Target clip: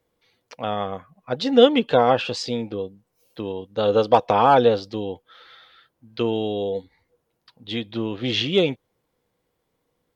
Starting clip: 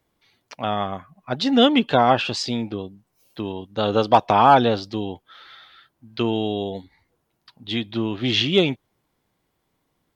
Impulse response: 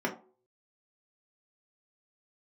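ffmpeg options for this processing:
-af "equalizer=f=490:t=o:w=0.24:g=12.5,volume=0.708"

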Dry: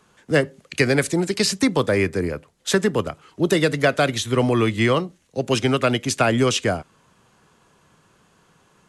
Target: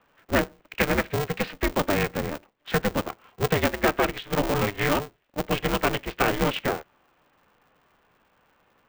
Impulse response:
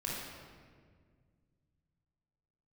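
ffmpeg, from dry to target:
-af "highpass=f=270:t=q:w=0.5412,highpass=f=270:t=q:w=1.307,lowpass=f=3100:t=q:w=0.5176,lowpass=f=3100:t=q:w=0.7071,lowpass=f=3100:t=q:w=1.932,afreqshift=-70,aeval=exprs='val(0)*sgn(sin(2*PI*150*n/s))':c=same,volume=0.668"

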